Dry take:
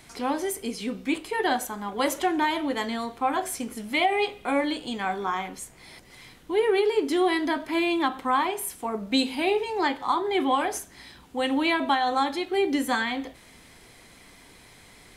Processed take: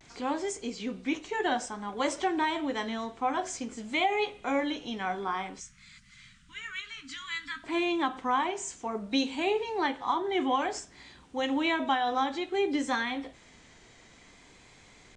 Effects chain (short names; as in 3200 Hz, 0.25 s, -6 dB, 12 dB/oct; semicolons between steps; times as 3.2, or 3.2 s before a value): nonlinear frequency compression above 3700 Hz 1.5:1; vibrato 0.56 Hz 44 cents; 5.6–7.64 elliptic band-stop 210–1300 Hz, stop band 40 dB; gain -4 dB